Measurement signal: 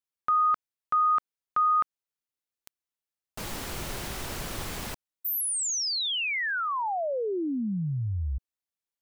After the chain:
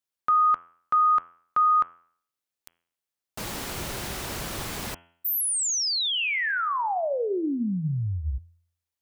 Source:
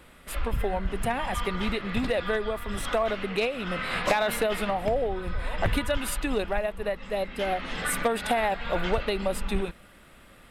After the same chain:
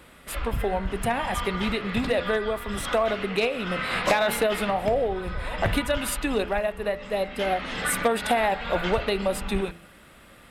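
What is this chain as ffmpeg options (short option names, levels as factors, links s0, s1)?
-af "highpass=f=49:p=1,bandreject=f=85.05:t=h:w=4,bandreject=f=170.1:t=h:w=4,bandreject=f=255.15:t=h:w=4,bandreject=f=340.2:t=h:w=4,bandreject=f=425.25:t=h:w=4,bandreject=f=510.3:t=h:w=4,bandreject=f=595.35:t=h:w=4,bandreject=f=680.4:t=h:w=4,bandreject=f=765.45:t=h:w=4,bandreject=f=850.5:t=h:w=4,bandreject=f=935.55:t=h:w=4,bandreject=f=1020.6:t=h:w=4,bandreject=f=1105.65:t=h:w=4,bandreject=f=1190.7:t=h:w=4,bandreject=f=1275.75:t=h:w=4,bandreject=f=1360.8:t=h:w=4,bandreject=f=1445.85:t=h:w=4,bandreject=f=1530.9:t=h:w=4,bandreject=f=1615.95:t=h:w=4,bandreject=f=1701:t=h:w=4,bandreject=f=1786.05:t=h:w=4,bandreject=f=1871.1:t=h:w=4,bandreject=f=1956.15:t=h:w=4,bandreject=f=2041.2:t=h:w=4,bandreject=f=2126.25:t=h:w=4,bandreject=f=2211.3:t=h:w=4,bandreject=f=2296.35:t=h:w=4,bandreject=f=2381.4:t=h:w=4,bandreject=f=2466.45:t=h:w=4,bandreject=f=2551.5:t=h:w=4,bandreject=f=2636.55:t=h:w=4,bandreject=f=2721.6:t=h:w=4,bandreject=f=2806.65:t=h:w=4,bandreject=f=2891.7:t=h:w=4,bandreject=f=2976.75:t=h:w=4,bandreject=f=3061.8:t=h:w=4,bandreject=f=3146.85:t=h:w=4,bandreject=f=3231.9:t=h:w=4,bandreject=f=3316.95:t=h:w=4,volume=1.41"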